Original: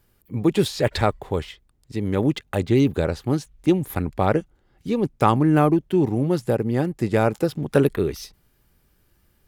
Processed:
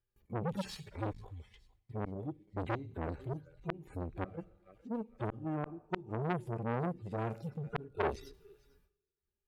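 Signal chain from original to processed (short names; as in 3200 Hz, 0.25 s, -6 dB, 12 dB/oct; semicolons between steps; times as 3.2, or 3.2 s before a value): median-filter separation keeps harmonic; random-step tremolo 3.9 Hz, depth 85%; thinning echo 0.452 s, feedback 42%, high-pass 990 Hz, level -23 dB; gate with hold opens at -56 dBFS; high shelf 4100 Hz -7 dB; flipped gate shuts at -15 dBFS, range -26 dB; on a send at -19 dB: reverb, pre-delay 3 ms; on the sum: core saturation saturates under 2100 Hz; gain -1 dB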